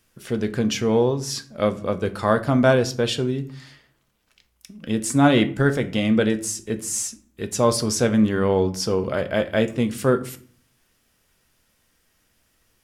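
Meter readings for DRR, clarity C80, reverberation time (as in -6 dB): 9.0 dB, 20.5 dB, 0.50 s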